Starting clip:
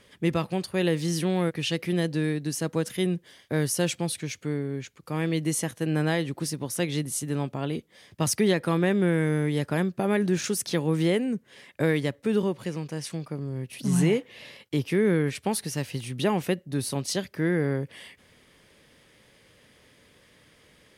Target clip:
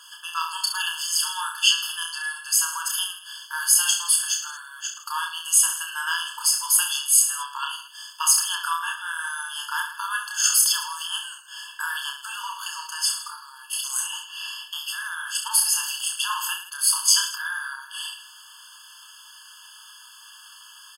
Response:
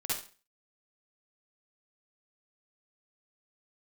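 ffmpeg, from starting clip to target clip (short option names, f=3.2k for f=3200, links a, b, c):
-filter_complex "[0:a]bass=f=250:g=11,treble=f=4k:g=7,acompressor=threshold=-21dB:ratio=3,asplit=2[a][b];[b]aecho=0:1:30|66|109.2|161|223.2:0.631|0.398|0.251|0.158|0.1[c];[a][c]amix=inputs=2:normalize=0,alimiter=level_in=12dB:limit=-1dB:release=50:level=0:latency=1,afftfilt=real='re*eq(mod(floor(b*sr/1024/880),2),1)':imag='im*eq(mod(floor(b*sr/1024/880),2),1)':win_size=1024:overlap=0.75"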